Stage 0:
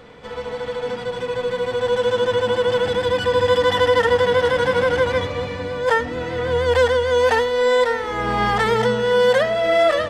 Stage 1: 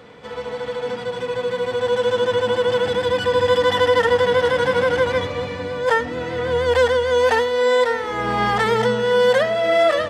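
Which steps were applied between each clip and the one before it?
high-pass filter 85 Hz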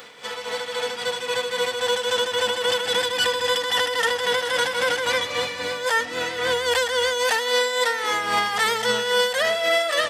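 spectral tilt +4.5 dB per octave
brickwall limiter −14.5 dBFS, peak gain reduction 10 dB
amplitude tremolo 3.7 Hz, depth 51%
level +3 dB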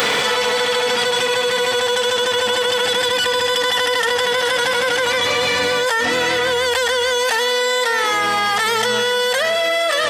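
envelope flattener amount 100%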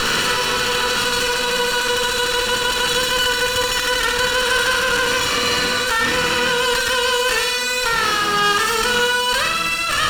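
lower of the sound and its delayed copy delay 0.71 ms
flutter between parallel walls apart 9.2 metres, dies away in 0.62 s

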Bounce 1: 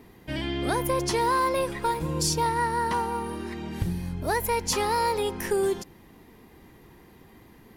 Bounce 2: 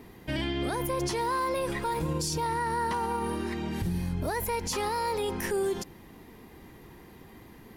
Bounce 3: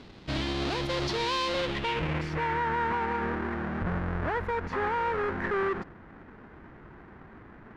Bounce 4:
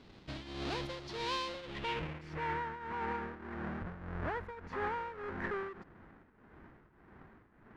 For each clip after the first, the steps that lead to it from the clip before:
brickwall limiter −24 dBFS, peak gain reduction 9 dB; level +2 dB
each half-wave held at its own peak; low-pass filter sweep 4,100 Hz → 1,600 Hz, 0:01.49–0:02.62; level −5 dB
shaped tremolo triangle 1.7 Hz, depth 80%; level −6 dB

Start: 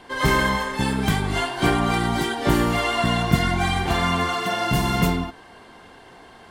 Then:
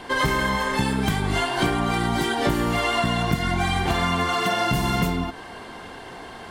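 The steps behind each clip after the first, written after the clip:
downward compressor 6 to 1, threshold −27 dBFS, peak gain reduction 15 dB
level +7.5 dB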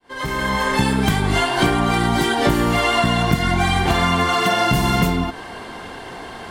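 fade in at the beginning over 0.67 s
level +5 dB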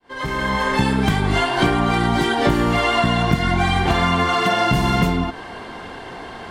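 high-shelf EQ 8,200 Hz −12 dB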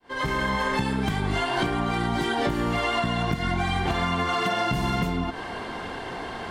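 downward compressor, threshold −22 dBFS, peak gain reduction 11 dB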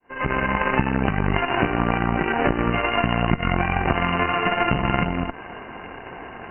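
harmonic generator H 2 −8 dB, 3 −18 dB, 7 −25 dB, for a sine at −11 dBFS
linear-phase brick-wall low-pass 3,000 Hz
level +8 dB

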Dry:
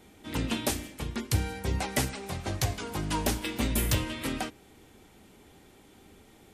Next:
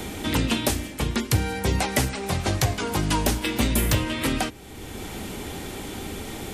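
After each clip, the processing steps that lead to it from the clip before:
multiband upward and downward compressor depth 70%
level +7 dB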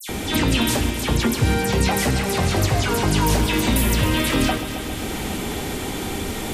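brickwall limiter −16 dBFS, peak gain reduction 8 dB
all-pass dispersion lows, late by 90 ms, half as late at 3,000 Hz
on a send: echo machine with several playback heads 135 ms, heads first and second, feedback 74%, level −14.5 dB
on the sum: level +6.5 dB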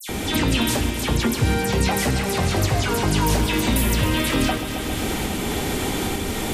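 camcorder AGC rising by 8.6 dB per second
level −1 dB

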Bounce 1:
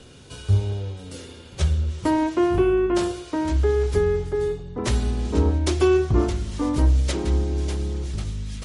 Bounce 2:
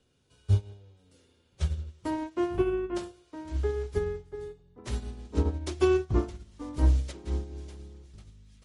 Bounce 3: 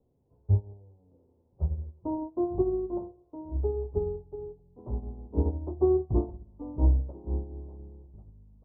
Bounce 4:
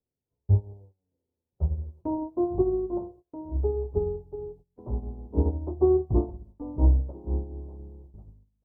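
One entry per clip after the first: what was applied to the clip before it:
expander for the loud parts 2.5 to 1, over −28 dBFS; level −3 dB
Butterworth low-pass 940 Hz 48 dB per octave
noise gate −51 dBFS, range −22 dB; level +2.5 dB

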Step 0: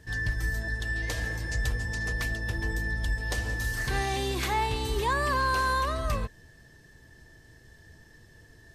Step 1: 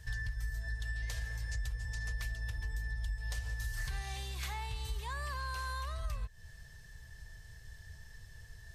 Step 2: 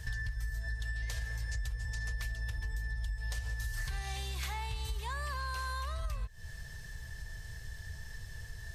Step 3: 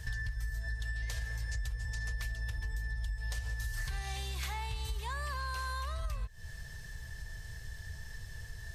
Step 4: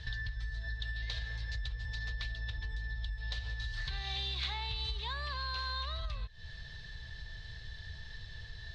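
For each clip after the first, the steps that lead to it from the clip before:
tilt shelving filter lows +5.5 dB, about 710 Hz; downward compressor 10 to 1, threshold −34 dBFS, peak gain reduction 15.5 dB; guitar amp tone stack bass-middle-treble 10-0-10; level +7.5 dB
downward compressor 2 to 1, threshold −47 dBFS, peak gain reduction 8 dB; level +8 dB
no processing that can be heard
transistor ladder low-pass 4,200 Hz, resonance 70%; level +9.5 dB

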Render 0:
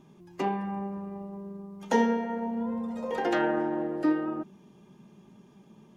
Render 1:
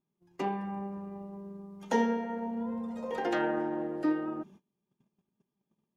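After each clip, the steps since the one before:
noise gate −49 dBFS, range −26 dB
level −3.5 dB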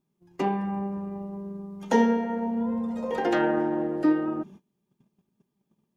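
low-shelf EQ 390 Hz +4 dB
level +4.5 dB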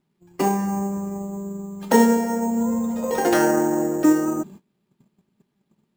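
decimation without filtering 6×
level +5.5 dB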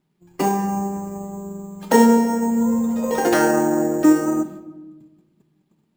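rectangular room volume 850 cubic metres, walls mixed, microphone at 0.53 metres
level +1 dB

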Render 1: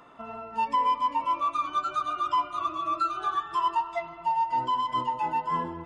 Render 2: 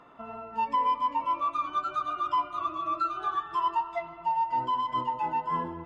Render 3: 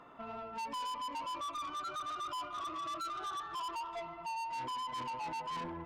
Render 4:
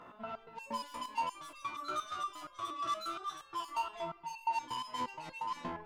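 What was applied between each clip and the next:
low-pass filter 3,000 Hz 6 dB per octave; level −1 dB
soft clipping −36 dBFS, distortion −6 dB; level −1.5 dB
step-sequenced resonator 8.5 Hz 61–540 Hz; level +11.5 dB

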